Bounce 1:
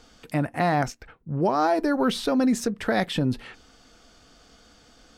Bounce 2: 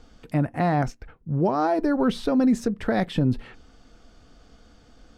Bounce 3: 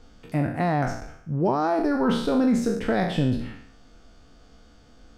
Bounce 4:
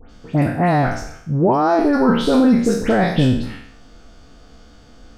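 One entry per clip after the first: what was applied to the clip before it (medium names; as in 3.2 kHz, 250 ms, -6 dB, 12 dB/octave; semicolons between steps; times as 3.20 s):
tilt EQ -2 dB/octave; trim -2 dB
spectral sustain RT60 0.68 s; trim -2 dB
phase dispersion highs, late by 104 ms, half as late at 2.4 kHz; trim +7.5 dB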